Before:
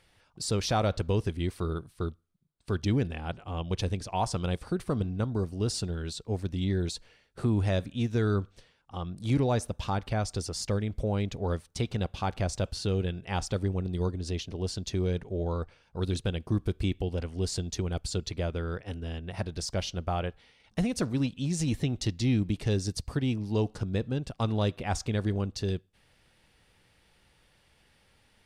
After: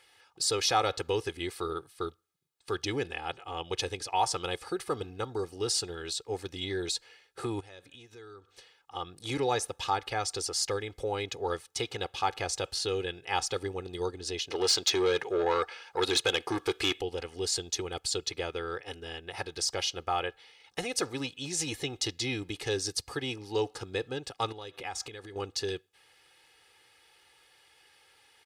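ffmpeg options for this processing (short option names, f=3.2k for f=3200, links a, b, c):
-filter_complex "[0:a]asettb=1/sr,asplit=3[a][b][c];[a]atrim=end=7.604[d];[b]atrim=start=7.6:end=8.95,asetpts=PTS-STARTPTS,afade=t=in:d=0.004:c=qsin,afade=t=out:st=1.346:d=0.004:c=qsin,acompressor=threshold=-43dB:ratio=6:attack=3.2:release=140:knee=1:detection=peak[e];[c]atrim=start=8.946[f];[d][e]acrossfade=d=0.004:c1=hsin:c2=qsin[g];[g][f]acrossfade=d=0.004:c1=qsin:c2=hsin,asettb=1/sr,asplit=3[h][i][j];[h]atrim=end=14.504[k];[i]atrim=start=14.5:end=17.01,asetpts=PTS-STARTPTS,afade=t=in:d=0.004:c=qsin,afade=t=out:st=2.506:d=0.004:c=qsin,asplit=2[l][m];[m]highpass=f=720:p=1,volume=19dB,asoftclip=type=tanh:threshold=-16.5dB[n];[l][n]amix=inputs=2:normalize=0,lowpass=f=4.7k:p=1,volume=-6dB[o];[j]atrim=start=17.006[p];[k][o]acrossfade=d=0.004:c1=hsin:c2=qsin[q];[q][p]acrossfade=d=0.004:c1=qsin:c2=hsin,asettb=1/sr,asplit=3[r][s][t];[r]atrim=end=24.524[u];[s]atrim=start=24.52:end=25.36,asetpts=PTS-STARTPTS,afade=t=in:d=0.004:c=qsin,afade=t=out:st=0.836:d=0.004:c=qsin,acompressor=threshold=-34dB:ratio=12:attack=3.2:release=140:knee=1:detection=peak[v];[t]atrim=start=25.356[w];[u][v]acrossfade=d=0.004:c1=hsin:c2=qsin[x];[x][w]acrossfade=d=0.004:c1=qsin:c2=hsin,highpass=f=860:p=1,aecho=1:1:2.4:0.71,volume=4dB"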